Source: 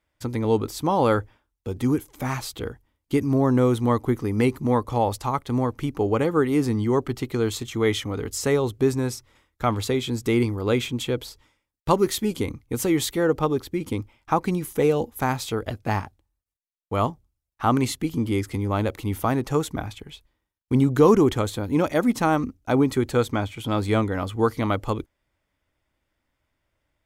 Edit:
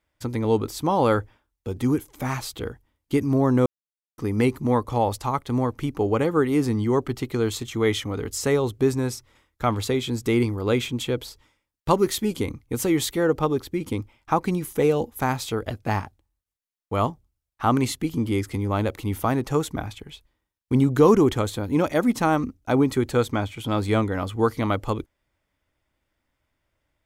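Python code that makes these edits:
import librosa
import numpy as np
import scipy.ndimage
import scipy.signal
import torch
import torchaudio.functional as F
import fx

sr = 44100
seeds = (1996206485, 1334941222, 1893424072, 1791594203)

y = fx.edit(x, sr, fx.silence(start_s=3.66, length_s=0.52), tone=tone)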